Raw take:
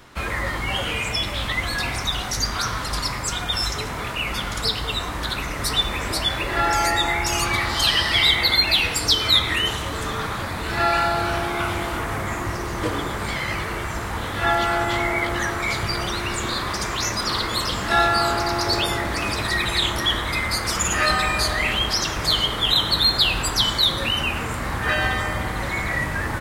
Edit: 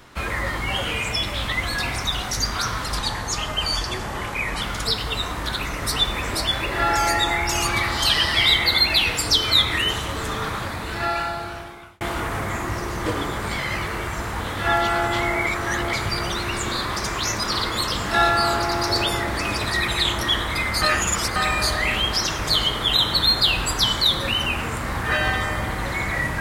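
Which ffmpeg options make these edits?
ffmpeg -i in.wav -filter_complex "[0:a]asplit=8[link_01][link_02][link_03][link_04][link_05][link_06][link_07][link_08];[link_01]atrim=end=2.994[link_09];[link_02]atrim=start=2.99:end=4.39,asetpts=PTS-STARTPTS,asetrate=37926,aresample=44100[link_10];[link_03]atrim=start=4.386:end=11.78,asetpts=PTS-STARTPTS,afade=type=out:start_time=5.934:duration=1.46[link_11];[link_04]atrim=start=11.78:end=15.242,asetpts=PTS-STARTPTS,afade=type=in:duration=0.004:curve=hsin[link_12];[link_05]atrim=start=15.238:end=15.702,asetpts=PTS-STARTPTS,areverse[link_13];[link_06]atrim=start=15.698:end=20.592[link_14];[link_07]atrim=start=20.588:end=21.132,asetpts=PTS-STARTPTS,areverse[link_15];[link_08]atrim=start=21.128[link_16];[link_09][link_10]acrossfade=duration=0.004:curve1=hsin:curve2=hsin[link_17];[link_11][link_12]concat=n=2:v=0:a=1[link_18];[link_17][link_18]acrossfade=duration=0.004:curve1=hsin:curve2=hsin[link_19];[link_19][link_13]acrossfade=duration=0.004:curve1=hsin:curve2=hsin[link_20];[link_20][link_14]acrossfade=duration=0.004:curve1=hsin:curve2=hsin[link_21];[link_21][link_15]acrossfade=duration=0.004:curve1=hsin:curve2=hsin[link_22];[link_22][link_16]acrossfade=duration=0.004:curve1=hsin:curve2=hsin" out.wav

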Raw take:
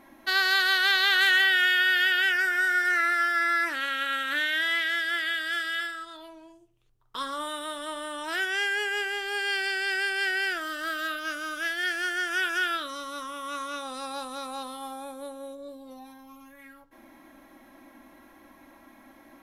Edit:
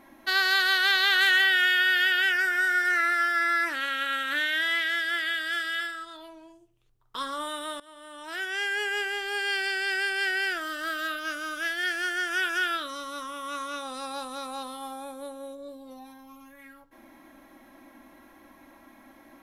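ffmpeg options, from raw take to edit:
ffmpeg -i in.wav -filter_complex "[0:a]asplit=2[link_01][link_02];[link_01]atrim=end=7.8,asetpts=PTS-STARTPTS,afade=type=out:start_time=7.796:duration=0.004:curve=hsin:silence=0.0944061[link_03];[link_02]atrim=start=7.8,asetpts=PTS-STARTPTS,afade=type=in:duration=1.08:silence=0.0944061[link_04];[link_03][link_04]concat=n=2:v=0:a=1" out.wav

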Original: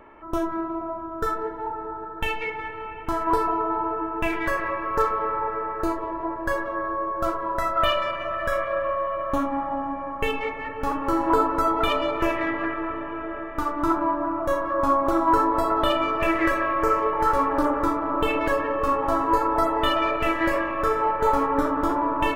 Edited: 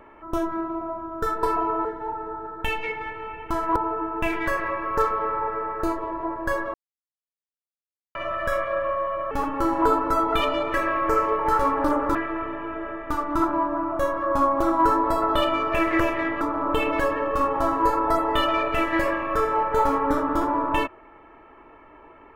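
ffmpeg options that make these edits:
ffmpeg -i in.wav -filter_complex "[0:a]asplit=11[link_01][link_02][link_03][link_04][link_05][link_06][link_07][link_08][link_09][link_10][link_11];[link_01]atrim=end=1.432[link_12];[link_02]atrim=start=3.338:end=3.762[link_13];[link_03]atrim=start=1.428:end=3.342[link_14];[link_04]atrim=start=3.758:end=6.74,asetpts=PTS-STARTPTS,afade=type=out:start_time=2.978:duration=0.004:curve=hsin[link_15];[link_05]atrim=start=6.74:end=8.15,asetpts=PTS-STARTPTS,volume=0[link_16];[link_06]atrim=start=8.15:end=9.312,asetpts=PTS-STARTPTS,afade=type=in:duration=0.004:curve=hsin[link_17];[link_07]atrim=start=10.788:end=12.222[link_18];[link_08]atrim=start=16.478:end=17.892[link_19];[link_09]atrim=start=12.628:end=16.482[link_20];[link_10]atrim=start=12.218:end=12.632[link_21];[link_11]atrim=start=17.888[link_22];[link_12][link_13]acrossfade=duration=0.004:curve1=hsin:curve2=hsin[link_23];[link_23][link_14]acrossfade=duration=0.004:curve1=hsin:curve2=hsin[link_24];[link_15][link_16][link_17]concat=n=3:v=0:a=1[link_25];[link_24][link_25]acrossfade=duration=0.004:curve1=hsin:curve2=hsin[link_26];[link_26][link_18]acrossfade=duration=0.004:curve1=hsin:curve2=hsin[link_27];[link_27][link_19]acrossfade=duration=0.004:curve1=hsin:curve2=hsin[link_28];[link_28][link_20]acrossfade=duration=0.004:curve1=hsin:curve2=hsin[link_29];[link_29][link_21]acrossfade=duration=0.004:curve1=hsin:curve2=hsin[link_30];[link_30][link_22]acrossfade=duration=0.004:curve1=hsin:curve2=hsin" out.wav

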